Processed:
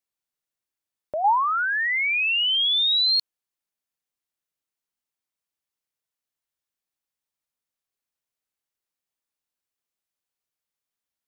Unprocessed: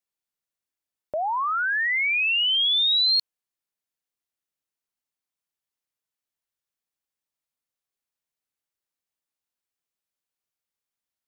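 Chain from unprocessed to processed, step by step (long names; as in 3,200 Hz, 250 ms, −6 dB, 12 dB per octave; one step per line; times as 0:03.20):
0:01.24–0:01.65: parametric band 840 Hz +8.5 dB 0.57 octaves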